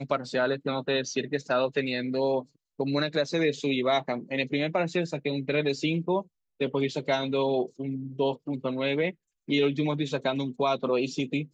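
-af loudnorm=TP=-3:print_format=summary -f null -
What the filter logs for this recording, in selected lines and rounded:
Input Integrated:    -28.2 LUFS
Input True Peak:     -12.0 dBTP
Input LRA:             1.2 LU
Input Threshold:     -38.3 LUFS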